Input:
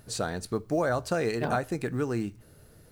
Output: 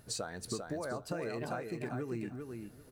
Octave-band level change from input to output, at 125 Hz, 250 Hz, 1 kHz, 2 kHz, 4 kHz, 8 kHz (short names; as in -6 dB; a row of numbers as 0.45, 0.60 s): -9.0, -8.5, -10.5, -10.0, -4.5, -3.5 dB